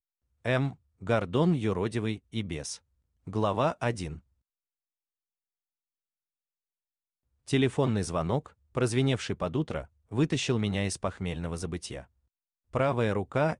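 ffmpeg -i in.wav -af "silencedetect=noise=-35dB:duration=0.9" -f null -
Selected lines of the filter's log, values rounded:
silence_start: 4.14
silence_end: 7.49 | silence_duration: 3.34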